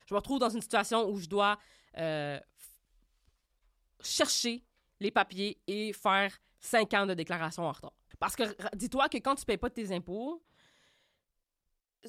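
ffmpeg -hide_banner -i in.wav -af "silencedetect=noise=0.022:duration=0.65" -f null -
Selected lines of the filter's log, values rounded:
silence_start: 2.37
silence_end: 4.05 | silence_duration: 1.68
silence_start: 10.32
silence_end: 12.09 | silence_duration: 1.76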